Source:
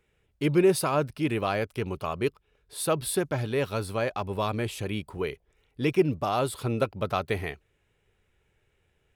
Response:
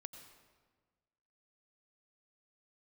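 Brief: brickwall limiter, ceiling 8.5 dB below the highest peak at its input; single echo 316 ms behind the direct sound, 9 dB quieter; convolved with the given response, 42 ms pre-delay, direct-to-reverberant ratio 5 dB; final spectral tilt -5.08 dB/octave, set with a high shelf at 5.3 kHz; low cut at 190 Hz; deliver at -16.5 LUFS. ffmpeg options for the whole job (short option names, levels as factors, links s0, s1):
-filter_complex "[0:a]highpass=190,highshelf=f=5300:g=-6.5,alimiter=limit=0.112:level=0:latency=1,aecho=1:1:316:0.355,asplit=2[s0][s1];[1:a]atrim=start_sample=2205,adelay=42[s2];[s1][s2]afir=irnorm=-1:irlink=0,volume=1[s3];[s0][s3]amix=inputs=2:normalize=0,volume=5.01"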